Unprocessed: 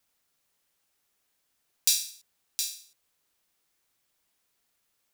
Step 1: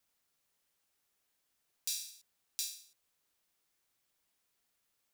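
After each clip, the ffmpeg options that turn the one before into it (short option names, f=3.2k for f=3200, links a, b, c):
-af "alimiter=limit=-12dB:level=0:latency=1:release=357,volume=-4.5dB"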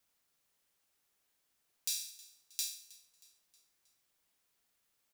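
-af "aecho=1:1:316|632|948|1264:0.0891|0.0463|0.0241|0.0125,volume=1dB"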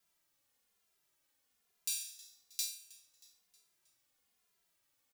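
-filter_complex "[0:a]asplit=2[a][b];[b]adelay=2.5,afreqshift=-1.1[c];[a][c]amix=inputs=2:normalize=1,volume=3dB"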